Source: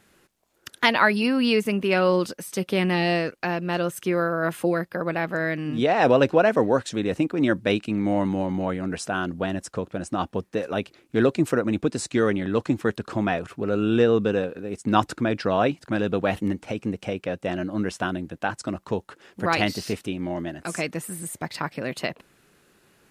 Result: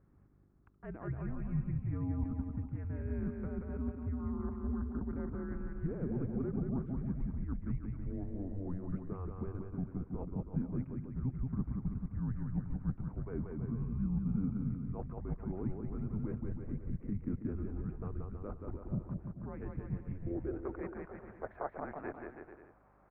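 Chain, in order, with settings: reverse; compressor 12:1, threshold -30 dBFS, peak gain reduction 18 dB; reverse; band-pass sweep 420 Hz -> 950 Hz, 19.88–21.02; mistuned SSB -280 Hz 170–2300 Hz; bouncing-ball echo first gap 0.18 s, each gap 0.8×, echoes 5; buzz 50 Hz, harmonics 8, -71 dBFS -4 dB/oct; gain +1 dB

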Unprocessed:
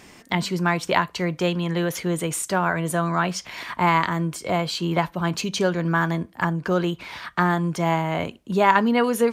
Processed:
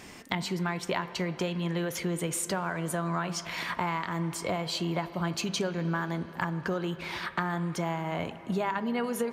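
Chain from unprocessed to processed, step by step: compressor, threshold -28 dBFS, peak gain reduction 15.5 dB; on a send: reverb RT60 4.5 s, pre-delay 4 ms, DRR 12 dB

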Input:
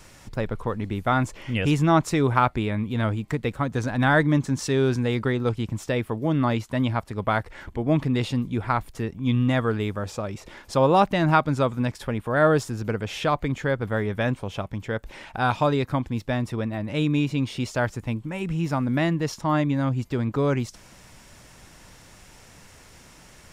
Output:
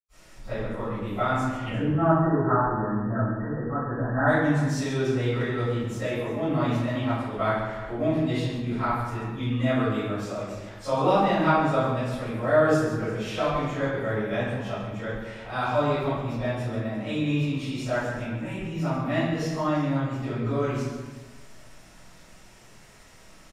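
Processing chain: 1.57–4.17 brick-wall FIR low-pass 1900 Hz; tapped delay 0.135/0.347 s -10.5/-16.5 dB; reverb RT60 1.1 s, pre-delay 85 ms; gain +7.5 dB

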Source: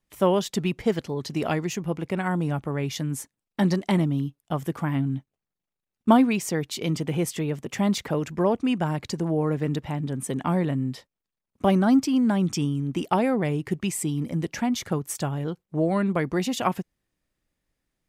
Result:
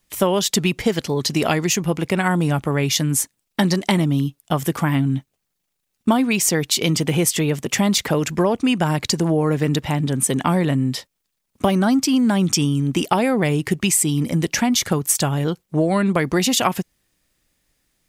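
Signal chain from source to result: high shelf 2400 Hz +9.5 dB; compressor 6:1, threshold -22 dBFS, peak gain reduction 10.5 dB; gain +8 dB

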